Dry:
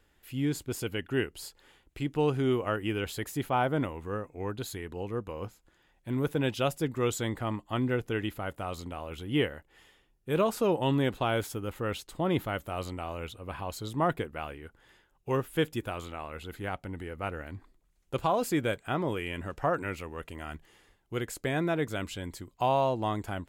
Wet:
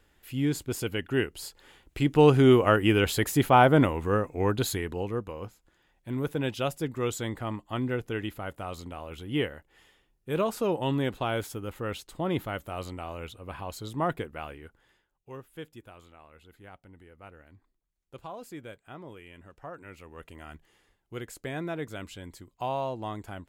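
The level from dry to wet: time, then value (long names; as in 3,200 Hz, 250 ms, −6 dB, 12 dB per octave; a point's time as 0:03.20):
0:01.41 +2.5 dB
0:02.27 +9 dB
0:04.68 +9 dB
0:05.41 −1 dB
0:14.64 −1 dB
0:15.29 −14 dB
0:19.77 −14 dB
0:20.22 −5 dB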